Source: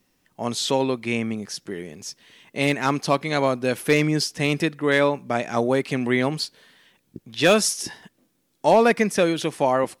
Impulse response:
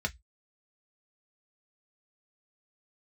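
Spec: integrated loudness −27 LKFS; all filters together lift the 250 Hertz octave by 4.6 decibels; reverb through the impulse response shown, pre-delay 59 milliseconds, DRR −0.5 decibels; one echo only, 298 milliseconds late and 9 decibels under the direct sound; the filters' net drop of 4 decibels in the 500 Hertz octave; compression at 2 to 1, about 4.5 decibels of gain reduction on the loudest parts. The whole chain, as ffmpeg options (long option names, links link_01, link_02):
-filter_complex "[0:a]equalizer=frequency=250:width_type=o:gain=7.5,equalizer=frequency=500:width_type=o:gain=-7,acompressor=threshold=-21dB:ratio=2,aecho=1:1:298:0.355,asplit=2[link_01][link_02];[1:a]atrim=start_sample=2205,adelay=59[link_03];[link_02][link_03]afir=irnorm=-1:irlink=0,volume=-4.5dB[link_04];[link_01][link_04]amix=inputs=2:normalize=0,volume=-6dB"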